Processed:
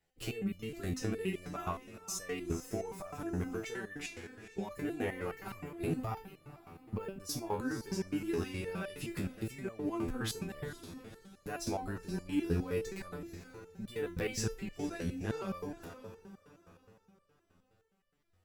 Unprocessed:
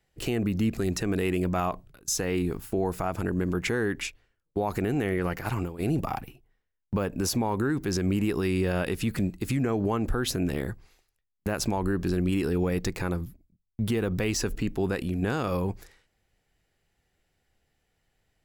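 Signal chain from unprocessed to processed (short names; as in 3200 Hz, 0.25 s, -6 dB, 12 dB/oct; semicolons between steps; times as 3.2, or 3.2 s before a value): diffused feedback echo 0.491 s, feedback 43%, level -13 dB; stepped resonator 9.6 Hz 84–590 Hz; gain +3 dB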